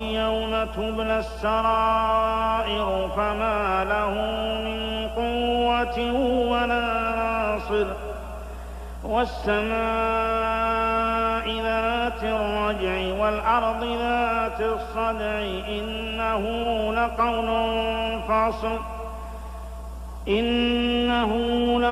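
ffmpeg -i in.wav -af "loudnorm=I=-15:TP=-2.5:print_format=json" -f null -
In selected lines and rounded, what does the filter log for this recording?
"input_i" : "-23.9",
"input_tp" : "-10.1",
"input_lra" : "2.2",
"input_thresh" : "-34.4",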